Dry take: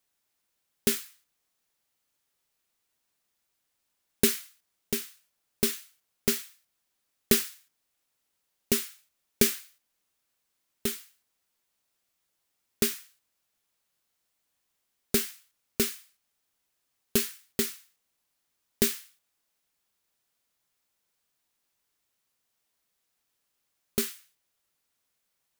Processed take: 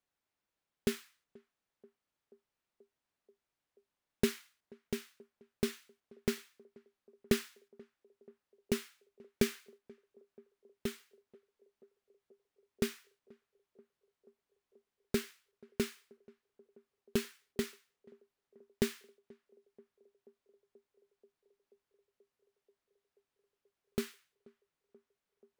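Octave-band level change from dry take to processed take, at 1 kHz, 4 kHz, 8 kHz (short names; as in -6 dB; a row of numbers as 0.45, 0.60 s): -5.0, -10.5, -15.5 dB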